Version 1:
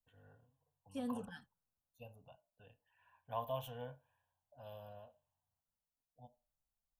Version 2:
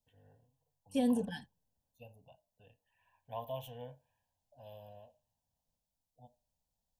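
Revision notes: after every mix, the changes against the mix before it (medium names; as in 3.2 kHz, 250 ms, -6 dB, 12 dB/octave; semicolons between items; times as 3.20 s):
second voice +11.0 dB; master: add Butterworth band-stop 1.3 kHz, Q 1.8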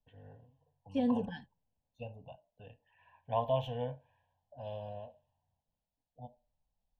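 first voice +10.5 dB; master: add distance through air 210 m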